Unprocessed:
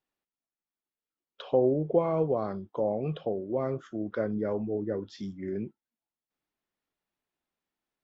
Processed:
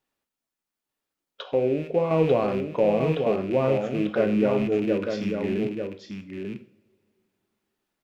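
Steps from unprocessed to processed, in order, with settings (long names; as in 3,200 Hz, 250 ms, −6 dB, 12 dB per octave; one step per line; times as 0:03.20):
loose part that buzzes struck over −38 dBFS, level −35 dBFS
0:01.43–0:02.11: tuned comb filter 56 Hz, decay 0.23 s, harmonics odd, mix 70%
single-tap delay 893 ms −6 dB
coupled-rooms reverb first 0.46 s, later 2.9 s, from −26 dB, DRR 7.5 dB
level +6 dB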